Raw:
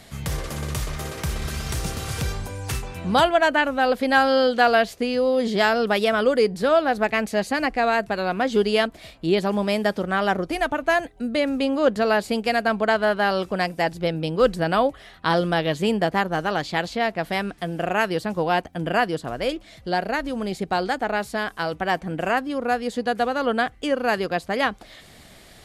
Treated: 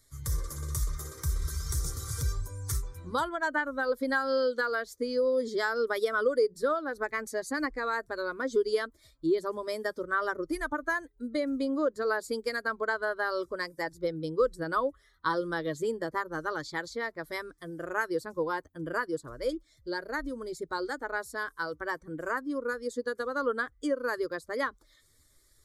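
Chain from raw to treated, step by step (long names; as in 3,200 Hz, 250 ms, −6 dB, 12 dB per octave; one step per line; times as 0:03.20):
spectral dynamics exaggerated over time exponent 1.5
downward compressor, threshold −23 dBFS, peak gain reduction 9.5 dB
phaser with its sweep stopped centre 730 Hz, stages 6
level +2 dB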